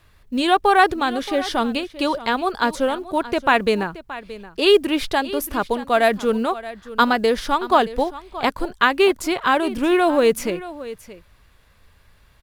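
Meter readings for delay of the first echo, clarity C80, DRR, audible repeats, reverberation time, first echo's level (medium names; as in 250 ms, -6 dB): 625 ms, no reverb, no reverb, 1, no reverb, -16.0 dB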